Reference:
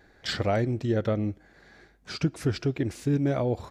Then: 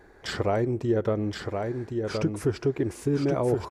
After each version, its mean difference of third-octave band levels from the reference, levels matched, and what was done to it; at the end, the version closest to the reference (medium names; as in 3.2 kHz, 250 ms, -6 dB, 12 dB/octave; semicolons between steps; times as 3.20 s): 5.5 dB: bass shelf 76 Hz +5.5 dB; compression 1.5:1, threshold -32 dBFS, peak gain reduction 5 dB; fifteen-band graphic EQ 400 Hz +9 dB, 1 kHz +9 dB, 4 kHz -5 dB, 10 kHz +6 dB; delay 1072 ms -5 dB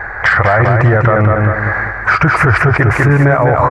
9.5 dB: FFT filter 110 Hz 0 dB, 260 Hz -15 dB, 1.1 kHz +13 dB, 2 kHz +7 dB, 3.5 kHz -21 dB, 5.3 kHz -19 dB; compression, threshold -29 dBFS, peak gain reduction 10.5 dB; on a send: feedback delay 198 ms, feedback 41%, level -6 dB; on the sum: loudness maximiser +30.5 dB; trim -1 dB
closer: first